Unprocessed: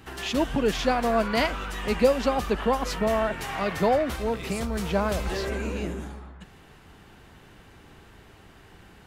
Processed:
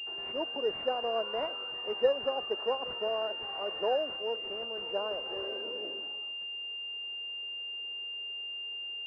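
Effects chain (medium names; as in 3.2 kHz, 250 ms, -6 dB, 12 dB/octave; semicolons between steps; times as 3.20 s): ladder high-pass 370 Hz, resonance 40%; class-D stage that switches slowly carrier 2.8 kHz; trim -2.5 dB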